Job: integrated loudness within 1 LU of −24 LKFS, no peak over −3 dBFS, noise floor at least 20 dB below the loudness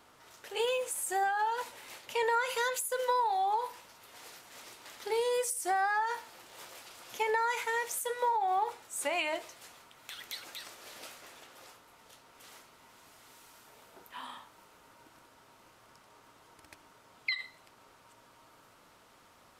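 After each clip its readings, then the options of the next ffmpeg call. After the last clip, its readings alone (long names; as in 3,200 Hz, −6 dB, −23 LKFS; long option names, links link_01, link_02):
integrated loudness −32.5 LKFS; sample peak −18.5 dBFS; target loudness −24.0 LKFS
→ -af "volume=8.5dB"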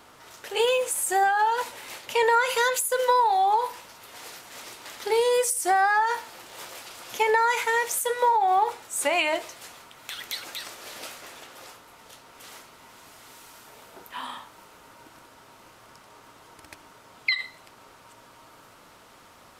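integrated loudness −24.0 LKFS; sample peak −10.0 dBFS; background noise floor −53 dBFS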